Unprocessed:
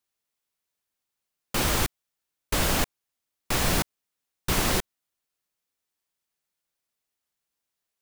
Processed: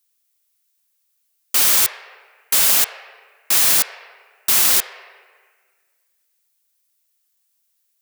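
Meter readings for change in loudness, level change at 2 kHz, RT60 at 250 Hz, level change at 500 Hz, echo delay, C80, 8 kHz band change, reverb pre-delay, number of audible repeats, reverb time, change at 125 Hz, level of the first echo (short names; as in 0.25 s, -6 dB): +12.0 dB, +5.0 dB, 2.2 s, -3.5 dB, none, 10.5 dB, +13.5 dB, 3 ms, none, 1.6 s, under -10 dB, none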